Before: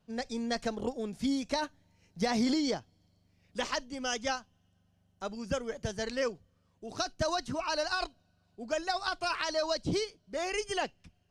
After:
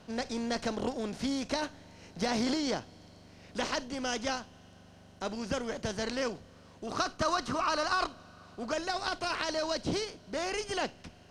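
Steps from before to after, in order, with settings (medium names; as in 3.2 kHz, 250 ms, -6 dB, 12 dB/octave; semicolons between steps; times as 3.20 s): spectral levelling over time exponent 0.6; 6.87–8.72 s: peaking EQ 1.2 kHz +15 dB 0.29 oct; trim -4 dB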